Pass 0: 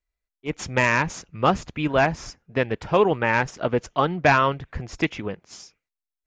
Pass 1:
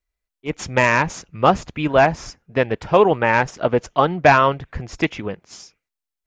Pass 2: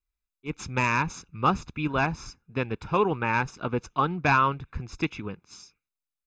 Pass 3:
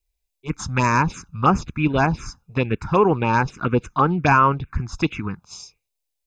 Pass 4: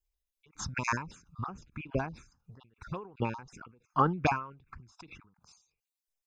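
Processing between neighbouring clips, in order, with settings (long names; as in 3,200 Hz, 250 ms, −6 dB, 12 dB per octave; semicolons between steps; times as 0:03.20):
dynamic equaliser 690 Hz, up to +4 dB, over −30 dBFS, Q 1.1; level +2.5 dB
comb filter 0.8 ms, depth 68%; level −9 dB
phaser swept by the level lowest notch 220 Hz, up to 3,800 Hz, full sweep at −19.5 dBFS; in parallel at +2 dB: brickwall limiter −19 dBFS, peak gain reduction 7.5 dB; on the sum: level +3 dB
time-frequency cells dropped at random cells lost 26%; every ending faded ahead of time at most 110 dB per second; level −6.5 dB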